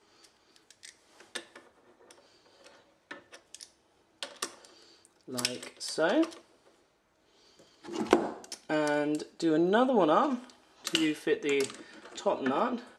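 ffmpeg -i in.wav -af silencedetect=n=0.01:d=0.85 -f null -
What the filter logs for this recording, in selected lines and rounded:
silence_start: 6.37
silence_end: 7.85 | silence_duration: 1.48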